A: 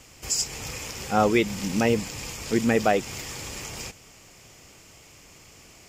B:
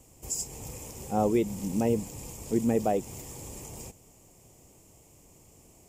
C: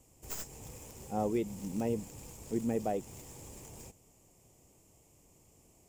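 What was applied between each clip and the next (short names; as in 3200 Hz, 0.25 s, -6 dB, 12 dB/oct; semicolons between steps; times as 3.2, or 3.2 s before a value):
EQ curve 360 Hz 0 dB, 960 Hz -4 dB, 1400 Hz -17 dB, 2800 Hz -13 dB, 4800 Hz -14 dB, 8300 Hz +1 dB; gain -3 dB
tracing distortion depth 0.11 ms; gain -7 dB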